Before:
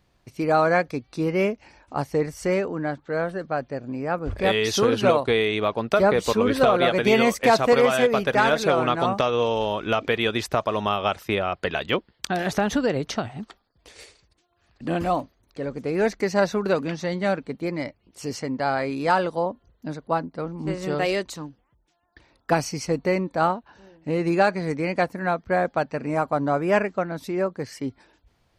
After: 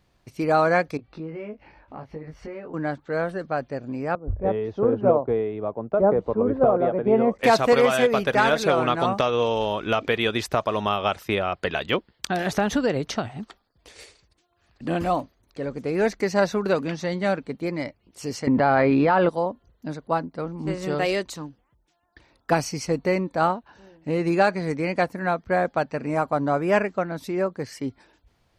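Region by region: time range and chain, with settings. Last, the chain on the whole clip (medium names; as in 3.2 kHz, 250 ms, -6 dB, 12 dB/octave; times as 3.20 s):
0.97–2.74 s: distance through air 330 m + compression 4:1, threshold -37 dBFS + doubling 19 ms -3 dB
4.15–7.39 s: Chebyshev low-pass 690 Hz + three bands expanded up and down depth 70%
18.47–19.29 s: distance through air 330 m + level flattener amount 100%
whole clip: none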